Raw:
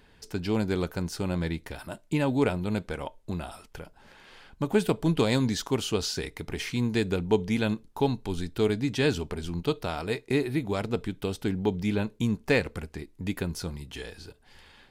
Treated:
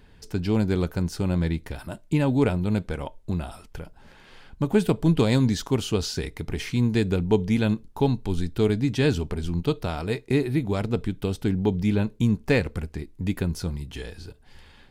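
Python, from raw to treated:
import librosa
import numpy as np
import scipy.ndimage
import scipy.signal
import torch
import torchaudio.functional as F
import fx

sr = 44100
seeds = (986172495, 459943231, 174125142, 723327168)

y = fx.low_shelf(x, sr, hz=240.0, db=8.5)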